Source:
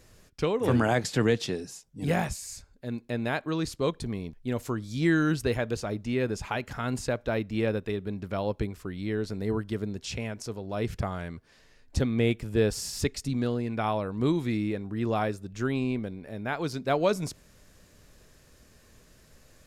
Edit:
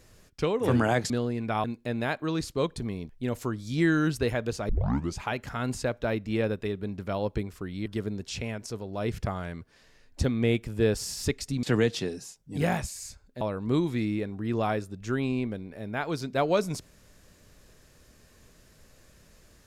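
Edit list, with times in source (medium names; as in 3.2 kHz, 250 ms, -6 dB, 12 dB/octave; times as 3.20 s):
1.10–2.88 s: swap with 13.39–13.93 s
5.93 s: tape start 0.48 s
9.10–9.62 s: delete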